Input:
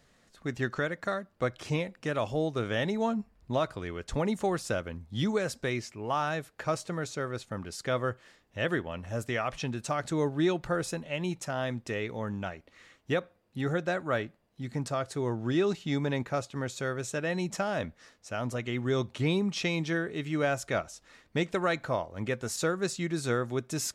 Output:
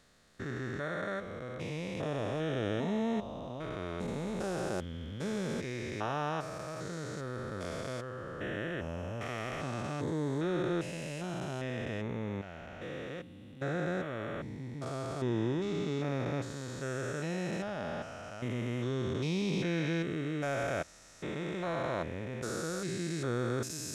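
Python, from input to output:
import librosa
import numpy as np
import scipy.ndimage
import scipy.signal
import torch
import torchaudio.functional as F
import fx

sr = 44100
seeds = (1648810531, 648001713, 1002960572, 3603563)

y = fx.spec_steps(x, sr, hold_ms=400)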